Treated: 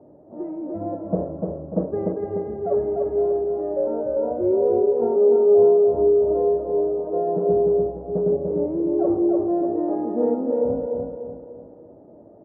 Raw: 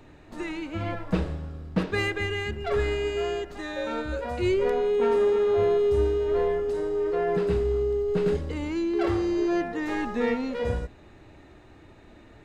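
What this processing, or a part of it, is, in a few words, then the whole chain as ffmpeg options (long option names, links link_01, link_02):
under water: -filter_complex "[0:a]highpass=180,lowpass=frequency=740:width=0.5412,lowpass=frequency=740:width=1.3066,equalizer=frequency=590:width_type=o:width=0.32:gain=9,highshelf=frequency=3400:gain=-8.5,asplit=2[link_01][link_02];[link_02]adelay=296,lowpass=frequency=3700:poles=1,volume=-3.5dB,asplit=2[link_03][link_04];[link_04]adelay=296,lowpass=frequency=3700:poles=1,volume=0.43,asplit=2[link_05][link_06];[link_06]adelay=296,lowpass=frequency=3700:poles=1,volume=0.43,asplit=2[link_07][link_08];[link_08]adelay=296,lowpass=frequency=3700:poles=1,volume=0.43,asplit=2[link_09][link_10];[link_10]adelay=296,lowpass=frequency=3700:poles=1,volume=0.43[link_11];[link_01][link_03][link_05][link_07][link_09][link_11]amix=inputs=6:normalize=0,volume=3.5dB"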